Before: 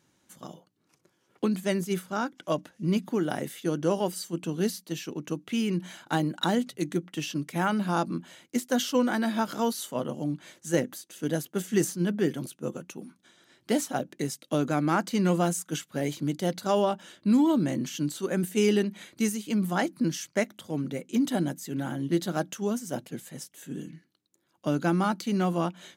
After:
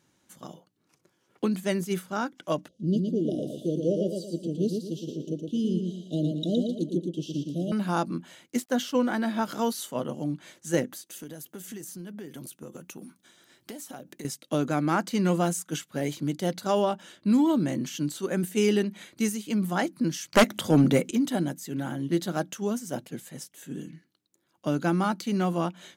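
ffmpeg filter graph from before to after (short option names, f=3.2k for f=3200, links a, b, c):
-filter_complex "[0:a]asettb=1/sr,asplit=3[a][b][c];[a]atrim=end=2.684[d];[b]atrim=start=2.68:end=7.72,asetpts=PTS-STARTPTS,afade=t=in:d=0.004:c=qsin,afade=t=out:st=5.036:d=0.004:c=qsin,asuperstop=centerf=1400:order=20:qfactor=0.59,aemphasis=mode=reproduction:type=75kf,aecho=1:1:115|230|345|460|575:0.596|0.22|0.0815|0.0302|0.0112,atrim=end_sample=222264[e];[c]atrim=start=7.716[f];[d][e]acrossfade=d=0.004:c1=hsin:c2=qsin[g];[g][f]acrossfade=d=0.004:c1=qsin:c2=hsin,asettb=1/sr,asplit=3[h][i][j];[h]atrim=end=8.624[k];[i]atrim=start=8.62:end=9.43,asetpts=PTS-STARTPTS,afade=t=in:d=0.004:c=qsin,afade=t=out:st=0.806:d=0.004:c=qsin,highshelf=f=3.9k:g=-6,aeval=exprs='sgn(val(0))*max(abs(val(0))-0.00188,0)':c=same[l];[j]atrim=start=9.426[m];[k][l]acrossfade=d=0.004:c1=hsin:c2=qsin[n];[n][m]acrossfade=d=0.004:c1=qsin:c2=hsin,asettb=1/sr,asplit=3[o][p][q];[o]atrim=end=11.064[r];[p]atrim=start=11.06:end=14.25,asetpts=PTS-STARTPTS,afade=t=in:d=0.004:c=qsin,afade=t=out:st=3.186:d=0.004:c=qsin,highshelf=f=9.6k:g=12,acompressor=threshold=-36dB:ratio=16:attack=3.2:release=140:knee=1:detection=peak[s];[q]atrim=start=14.246[t];[r][s]acrossfade=d=0.004:c1=hsin:c2=qsin[u];[u][t]acrossfade=d=0.004:c1=qsin:c2=hsin,asettb=1/sr,asplit=3[v][w][x];[v]atrim=end=20.334[y];[w]atrim=start=20.33:end=21.11,asetpts=PTS-STARTPTS,afade=t=in:d=0.004:c=qsin,afade=t=out:st=0.776:d=0.004:c=qsin,acompressor=mode=upward:threshold=-41dB:ratio=2.5:attack=3.2:release=140:knee=2.83:detection=peak,aeval=exprs='0.266*sin(PI/2*2.82*val(0)/0.266)':c=same[z];[x]atrim=start=21.106[aa];[y][z]acrossfade=d=0.004:c1=hsin:c2=qsin[ab];[ab][aa]acrossfade=d=0.004:c1=qsin:c2=hsin"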